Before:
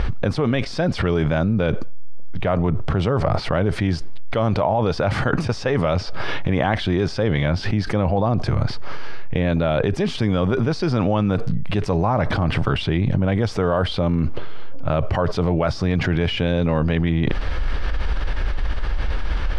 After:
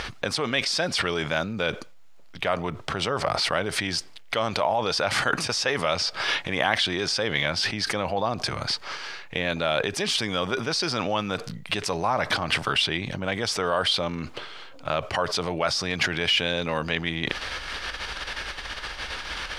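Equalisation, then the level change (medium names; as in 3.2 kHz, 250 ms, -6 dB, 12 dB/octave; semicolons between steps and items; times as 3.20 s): tilt EQ +4.5 dB/octave; -1.5 dB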